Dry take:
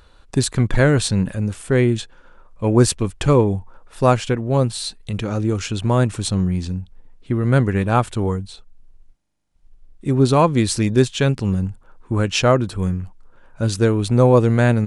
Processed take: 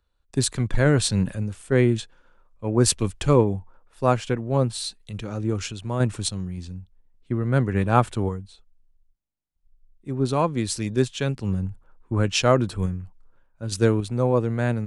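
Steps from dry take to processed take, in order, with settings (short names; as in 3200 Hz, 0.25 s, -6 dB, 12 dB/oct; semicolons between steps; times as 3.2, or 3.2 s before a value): random-step tremolo; three-band expander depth 40%; gain -2.5 dB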